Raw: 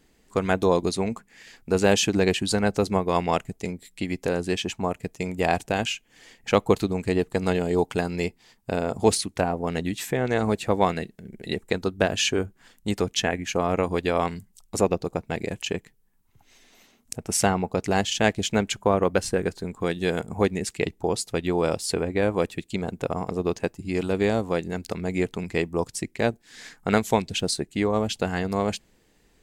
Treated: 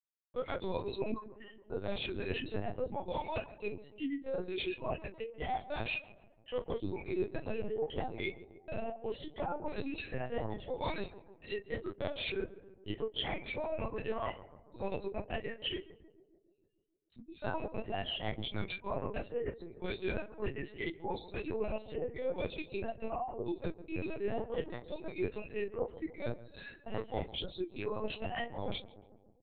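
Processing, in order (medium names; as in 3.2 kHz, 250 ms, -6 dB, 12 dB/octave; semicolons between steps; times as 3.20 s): drifting ripple filter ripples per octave 1.5, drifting +0.78 Hz, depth 17 dB; spectral noise reduction 28 dB; gate -43 dBFS, range -26 dB; high-pass 220 Hz 6 dB/octave; peaking EQ 1.4 kHz -5.5 dB 1.2 oct; reverse; compression 8:1, threshold -30 dBFS, peak gain reduction 18 dB; reverse; chorus 2 Hz, delay 17.5 ms, depth 7.8 ms; doubling 30 ms -11.5 dB; on a send: filtered feedback delay 146 ms, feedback 67%, low-pass 1.1 kHz, level -15 dB; on the sum: LPC vocoder at 8 kHz pitch kept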